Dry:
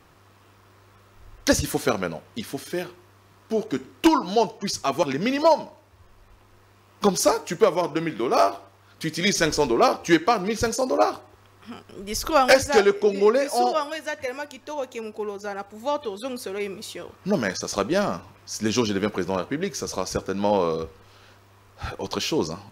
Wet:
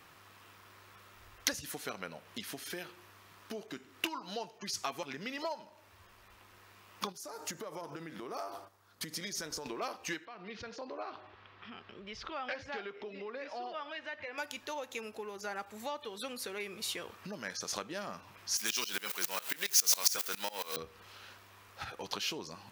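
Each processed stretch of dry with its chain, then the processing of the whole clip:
0:07.12–0:09.66: noise gate −50 dBFS, range −7 dB + parametric band 2,600 Hz −9 dB 1.2 octaves + downward compressor 4 to 1, threshold −32 dBFS
0:10.25–0:14.38: low-pass filter 3,900 Hz 24 dB per octave + downward compressor 2 to 1, threshold −44 dBFS
0:18.57–0:20.77: converter with a step at zero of −32.5 dBFS + spectral tilt +4.5 dB per octave + tremolo with a ramp in dB swelling 7.3 Hz, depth 22 dB
whole clip: bass and treble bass +8 dB, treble −12 dB; downward compressor 6 to 1, threshold −32 dBFS; spectral tilt +4.5 dB per octave; level −2 dB

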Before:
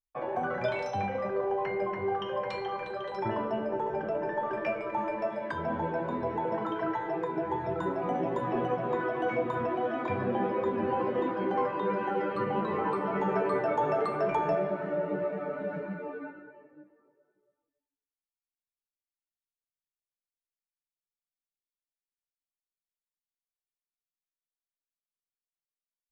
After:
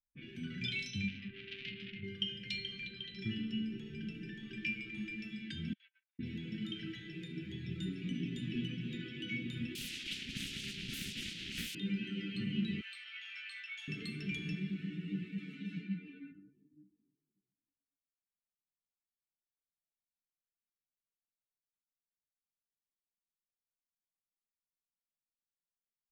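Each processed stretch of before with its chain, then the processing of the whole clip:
0:01.08–0:02.03: parametric band 580 Hz −11.5 dB 0.69 octaves + double-tracking delay 33 ms −9 dB + saturating transformer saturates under 1,300 Hz
0:05.73–0:06.19: noise gate −30 dBFS, range −29 dB + linear-phase brick-wall high-pass 970 Hz
0:09.75–0:11.75: hold until the input has moved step −36.5 dBFS + high-pass filter 580 Hz + highs frequency-modulated by the lows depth 0.71 ms
0:12.81–0:13.88: Butterworth high-pass 890 Hz + flutter between parallel walls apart 3.7 metres, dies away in 0.24 s
0:15.38–0:16.32: high-pass filter 150 Hz + high-shelf EQ 3,400 Hz +7.5 dB
whole clip: low-pass that shuts in the quiet parts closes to 330 Hz, open at −29 dBFS; elliptic band-stop filter 210–2,900 Hz, stop band 60 dB; bass and treble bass −13 dB, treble −8 dB; level +11 dB

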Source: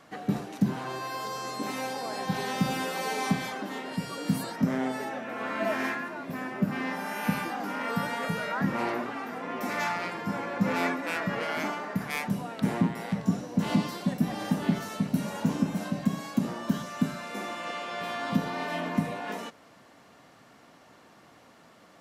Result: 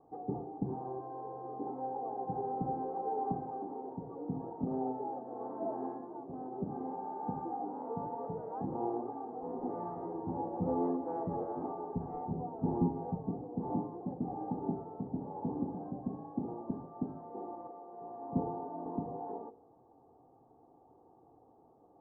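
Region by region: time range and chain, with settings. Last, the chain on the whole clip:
0:09.42–0:13.16: low-shelf EQ 120 Hz +9 dB + double-tracking delay 12 ms −3 dB
0:17.67–0:18.86: high-frequency loss of the air 260 metres + multiband upward and downward expander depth 70%
whole clip: elliptic low-pass filter 890 Hz, stop band 70 dB; comb filter 2.5 ms, depth 63%; hum removal 53.26 Hz, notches 14; level −5 dB

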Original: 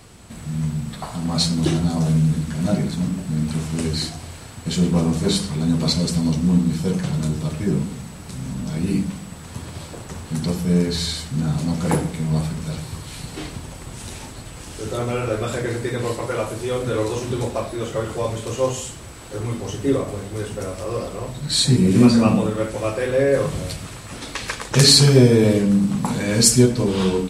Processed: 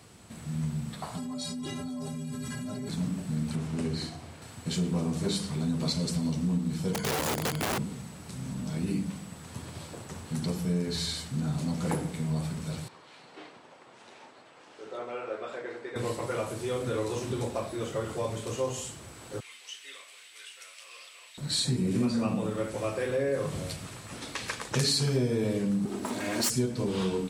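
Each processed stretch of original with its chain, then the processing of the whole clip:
0:01.17–0:02.89: stiff-string resonator 120 Hz, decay 0.43 s, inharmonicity 0.03 + envelope flattener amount 100%
0:03.55–0:04.42: high-pass filter 56 Hz + high-shelf EQ 3,300 Hz −9 dB + flutter between parallel walls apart 11.2 metres, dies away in 0.34 s
0:06.93–0:07.78: EQ curve with evenly spaced ripples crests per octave 1.8, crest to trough 16 dB + wrap-around overflow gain 16 dB
0:12.88–0:15.96: high-pass filter 510 Hz + head-to-tape spacing loss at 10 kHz 25 dB
0:19.40–0:21.38: high-pass with resonance 2,600 Hz, resonance Q 1.9 + high-shelf EQ 5,000 Hz −6 dB
0:25.85–0:26.50: lower of the sound and its delayed copy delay 3.2 ms + high-pass filter 120 Hz
whole clip: high-pass filter 85 Hz; downward compressor 3 to 1, threshold −19 dBFS; level −7 dB

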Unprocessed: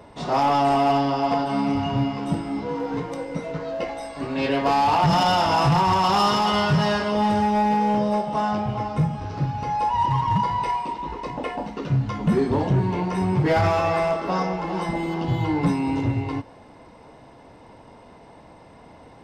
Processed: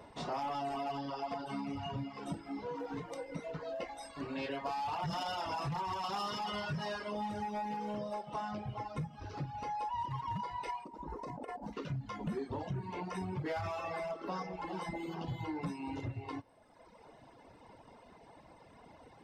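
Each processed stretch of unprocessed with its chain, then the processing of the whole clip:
0:10.84–0:11.73: parametric band 3,000 Hz −13 dB 1.5 octaves + compressor whose output falls as the input rises −32 dBFS, ratio −0.5
whole clip: reverb reduction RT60 1.3 s; low-shelf EQ 420 Hz −3 dB; downward compressor 3 to 1, threshold −32 dBFS; level −6 dB

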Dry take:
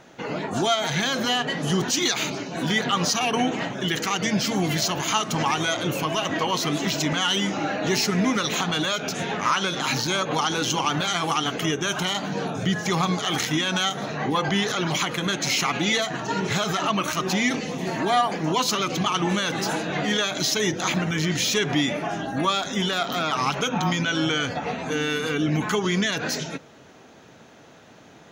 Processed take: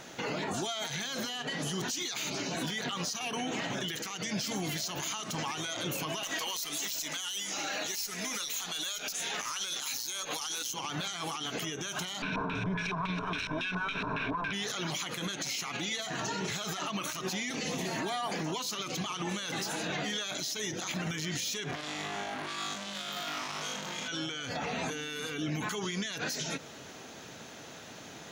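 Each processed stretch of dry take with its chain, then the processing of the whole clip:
0:06.23–0:10.74: RIAA equalisation recording + tube saturation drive 8 dB, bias 0.4
0:12.22–0:14.53: lower of the sound and its delayed copy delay 0.72 ms + EQ curve with evenly spaced ripples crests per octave 1.6, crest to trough 12 dB + auto-filter low-pass square 3.6 Hz 970–2,700 Hz
0:21.71–0:24.08: flutter between parallel walls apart 3.4 metres, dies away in 1.3 s + saturating transformer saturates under 3,100 Hz
whole clip: high-shelf EQ 2,800 Hz +10.5 dB; downward compressor, threshold −27 dBFS; brickwall limiter −25.5 dBFS

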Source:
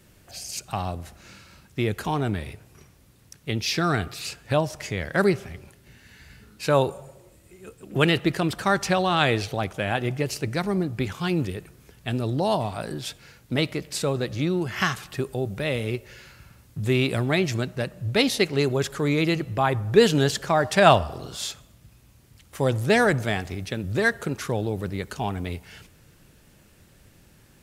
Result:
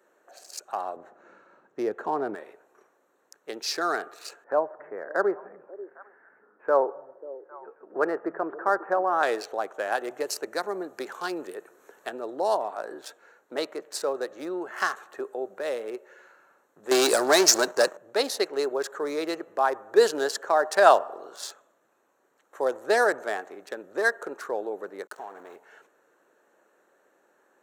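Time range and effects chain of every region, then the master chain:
0:00.96–0:02.35: high-pass filter 56 Hz + RIAA equalisation playback
0:04.44–0:09.23: inverse Chebyshev low-pass filter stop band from 4,200 Hz, stop band 50 dB + echo through a band-pass that steps 269 ms, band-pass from 150 Hz, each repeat 1.4 octaves, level −11.5 dB
0:09.92–0:12.09: high-shelf EQ 4,700 Hz +7.5 dB + multiband upward and downward compressor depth 40%
0:16.91–0:17.97: parametric band 6,100 Hz +13.5 dB 1.1 octaves + leveller curve on the samples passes 3 + one half of a high-frequency compander decoder only
0:25.07–0:25.56: downward compressor 12 to 1, threshold −30 dBFS + centre clipping without the shift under −38 dBFS
whole clip: adaptive Wiener filter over 9 samples; high-pass filter 400 Hz 24 dB per octave; flat-topped bell 2,700 Hz −11.5 dB 1 octave

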